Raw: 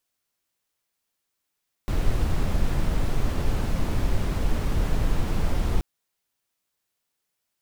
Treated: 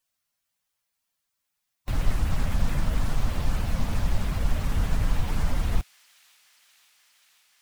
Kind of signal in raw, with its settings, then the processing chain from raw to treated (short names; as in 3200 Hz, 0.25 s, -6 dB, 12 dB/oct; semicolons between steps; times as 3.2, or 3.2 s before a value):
noise brown, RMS -21.5 dBFS 3.93 s
bin magnitudes rounded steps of 15 dB; bell 370 Hz -10 dB 0.79 oct; thin delay 0.53 s, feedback 82%, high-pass 2800 Hz, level -17.5 dB